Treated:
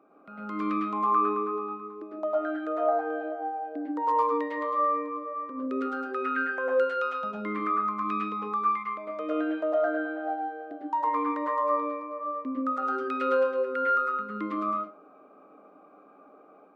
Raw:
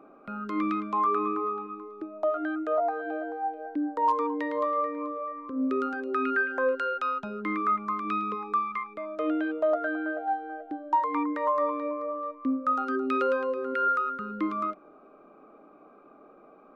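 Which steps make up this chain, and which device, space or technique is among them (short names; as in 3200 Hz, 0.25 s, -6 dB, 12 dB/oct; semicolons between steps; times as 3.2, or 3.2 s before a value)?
far laptop microphone (reverb RT60 0.35 s, pre-delay 98 ms, DRR -2.5 dB; HPF 190 Hz 6 dB/oct; AGC gain up to 3.5 dB); gain -8 dB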